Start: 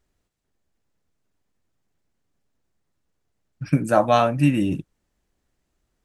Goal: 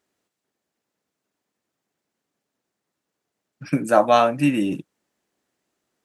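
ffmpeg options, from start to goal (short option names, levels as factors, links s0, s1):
-af "highpass=230,volume=1.26"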